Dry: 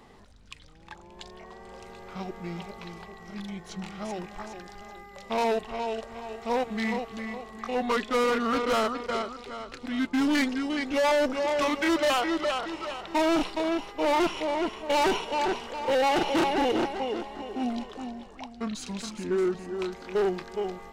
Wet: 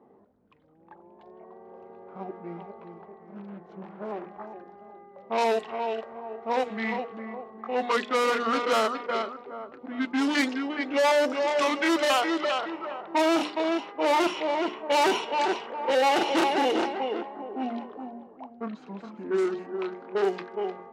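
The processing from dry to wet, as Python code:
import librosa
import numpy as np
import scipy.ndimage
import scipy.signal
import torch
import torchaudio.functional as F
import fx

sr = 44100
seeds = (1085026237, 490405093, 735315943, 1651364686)

y = fx.doppler_dist(x, sr, depth_ms=0.55, at=(3.03, 4.26))
y = fx.resample_bad(y, sr, factor=2, down='none', up='hold', at=(6.76, 7.88))
y = scipy.signal.sosfilt(scipy.signal.butter(2, 260.0, 'highpass', fs=sr, output='sos'), y)
y = fx.hum_notches(y, sr, base_hz=60, count=10)
y = fx.env_lowpass(y, sr, base_hz=540.0, full_db=-21.5)
y = F.gain(torch.from_numpy(y), 2.0).numpy()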